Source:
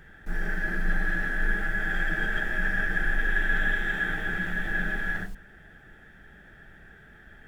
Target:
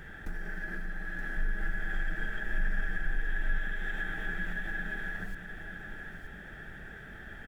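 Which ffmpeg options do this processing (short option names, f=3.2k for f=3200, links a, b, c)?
-filter_complex "[0:a]acompressor=threshold=-38dB:ratio=8,asettb=1/sr,asplit=3[a][b][c];[a]atrim=end=1.374[d];[b]atrim=start=1.37:end=3.58,asetpts=PTS-STARTPTS,afade=t=in:d=0.004:c=qsin,afade=t=out:st=2.206:d=0.004:c=qsin,lowshelf=f=70:g=10[e];[c]atrim=start=3.576[f];[d][e]acrossfade=d=0.004:c1=hsin:c2=qsin[g];[g][f]acrossfade=d=0.004:c1=qsin:c2=hsin,aecho=1:1:924:0.398,volume=4.5dB"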